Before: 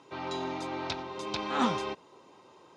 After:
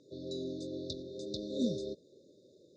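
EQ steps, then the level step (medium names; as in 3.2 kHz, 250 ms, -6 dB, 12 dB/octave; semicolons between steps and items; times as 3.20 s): brick-wall FIR band-stop 630–3500 Hz; steep low-pass 8.5 kHz 48 dB/octave; treble shelf 4.8 kHz -6 dB; -2.0 dB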